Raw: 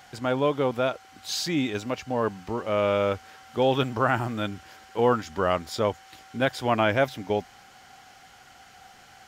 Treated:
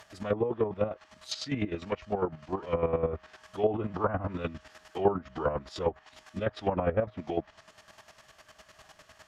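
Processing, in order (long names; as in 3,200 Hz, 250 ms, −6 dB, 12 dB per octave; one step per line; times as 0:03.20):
phase-vocoder pitch shift with formants kept −3.5 semitones
square-wave tremolo 9.9 Hz, depth 65%, duty 30%
treble cut that deepens with the level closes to 940 Hz, closed at −24 dBFS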